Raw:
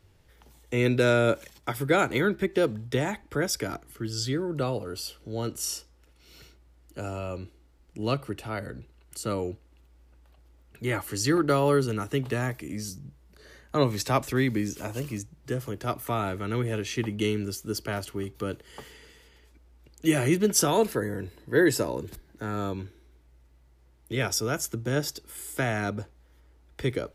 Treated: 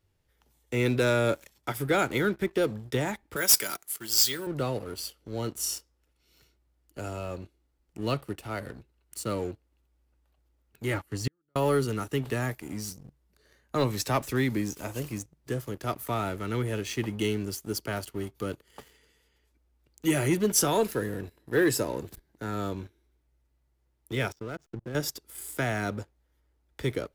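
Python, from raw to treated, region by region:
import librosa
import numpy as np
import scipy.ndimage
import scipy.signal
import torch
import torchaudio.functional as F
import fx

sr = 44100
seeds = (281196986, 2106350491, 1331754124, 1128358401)

y = fx.chain(x, sr, fx.tilt_eq(slope=4.5),
    fx.comb(ms=5.2, depth=0.34),
    fx.resample_bad(factor=2, down='none', up='hold'), at=(3.36, 4.47))
y = fx.chain(y, sr, fx.bass_treble(bass_db=6, treble_db=-8),
    fx.gate_flip(shuts_db=-15.0, range_db=-33),
    fx.upward_expand(threshold_db=-45.0, expansion=1.5), at=(10.94, 11.56))
y = fx.chain(y, sr, fx.lowpass(hz=3100.0, slope=12),
    fx.level_steps(step_db=17),
    fx.backlash(play_db=-45.5), at=(24.32, 24.95))
y = fx.leveller(y, sr, passes=2)
y = fx.high_shelf(y, sr, hz=9800.0, db=6.0)
y = F.gain(torch.from_numpy(y), -9.0).numpy()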